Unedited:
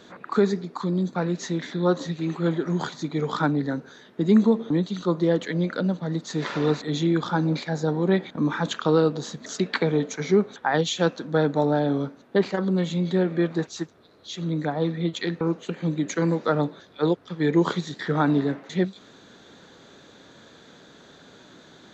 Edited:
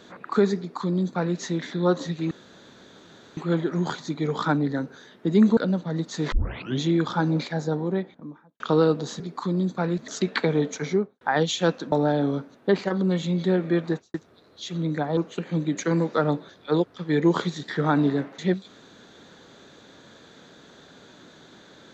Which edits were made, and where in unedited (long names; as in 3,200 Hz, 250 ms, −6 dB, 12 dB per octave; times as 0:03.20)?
0:00.58–0:01.36: duplicate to 0:09.36
0:02.31: splice in room tone 1.06 s
0:04.51–0:05.73: remove
0:06.48: tape start 0.48 s
0:07.56–0:08.76: fade out and dull
0:10.19–0:10.59: fade out and dull
0:11.30–0:11.59: remove
0:13.56–0:13.81: fade out and dull
0:14.84–0:15.48: remove